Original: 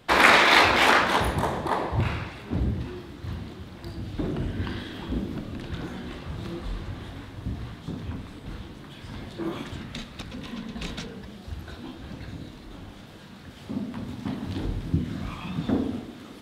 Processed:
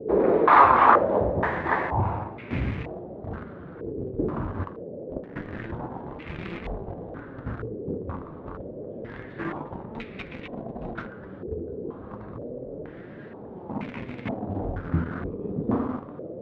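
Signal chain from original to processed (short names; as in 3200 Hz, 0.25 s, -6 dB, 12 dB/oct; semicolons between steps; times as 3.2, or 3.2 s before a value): in parallel at -4.5 dB: bit-crush 5-bit; 4.64–5.36 on the sum: power-law curve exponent 3; band noise 96–510 Hz -37 dBFS; flange 0.3 Hz, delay 4.3 ms, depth 7.8 ms, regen +67%; stepped low-pass 2.1 Hz 440–2300 Hz; gain -1.5 dB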